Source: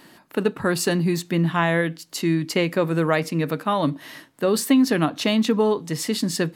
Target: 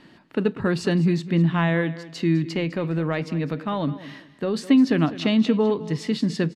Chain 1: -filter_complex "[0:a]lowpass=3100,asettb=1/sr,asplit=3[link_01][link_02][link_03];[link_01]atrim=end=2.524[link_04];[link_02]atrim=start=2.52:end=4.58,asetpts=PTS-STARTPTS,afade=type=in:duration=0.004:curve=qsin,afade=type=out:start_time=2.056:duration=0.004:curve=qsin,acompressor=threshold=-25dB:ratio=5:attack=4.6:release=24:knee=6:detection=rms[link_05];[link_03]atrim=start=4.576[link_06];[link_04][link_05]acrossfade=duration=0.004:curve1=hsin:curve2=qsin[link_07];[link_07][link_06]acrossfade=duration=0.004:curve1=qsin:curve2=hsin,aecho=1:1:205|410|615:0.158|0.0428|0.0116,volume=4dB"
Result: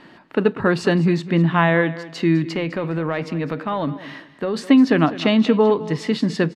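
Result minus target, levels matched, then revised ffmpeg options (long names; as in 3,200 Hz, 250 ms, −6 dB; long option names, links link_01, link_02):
1,000 Hz band +4.0 dB
-filter_complex "[0:a]lowpass=3100,equalizer=frequency=970:width=0.37:gain=-8.5,asettb=1/sr,asplit=3[link_01][link_02][link_03];[link_01]atrim=end=2.524[link_04];[link_02]atrim=start=2.52:end=4.58,asetpts=PTS-STARTPTS,afade=type=in:duration=0.004:curve=qsin,afade=type=out:start_time=2.056:duration=0.004:curve=qsin,acompressor=threshold=-25dB:ratio=5:attack=4.6:release=24:knee=6:detection=rms[link_05];[link_03]atrim=start=4.576[link_06];[link_04][link_05]acrossfade=duration=0.004:curve1=hsin:curve2=qsin[link_07];[link_07][link_06]acrossfade=duration=0.004:curve1=qsin:curve2=hsin,aecho=1:1:205|410|615:0.158|0.0428|0.0116,volume=4dB"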